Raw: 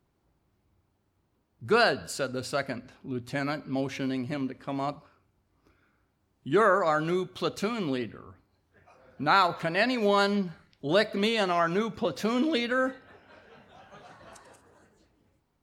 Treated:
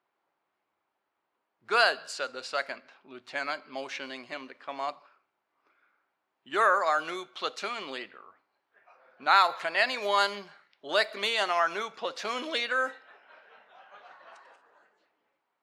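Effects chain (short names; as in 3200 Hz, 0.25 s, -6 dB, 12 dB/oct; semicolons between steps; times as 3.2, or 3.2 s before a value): low-pass opened by the level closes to 2700 Hz, open at -21.5 dBFS; HPF 750 Hz 12 dB/oct; gain +2 dB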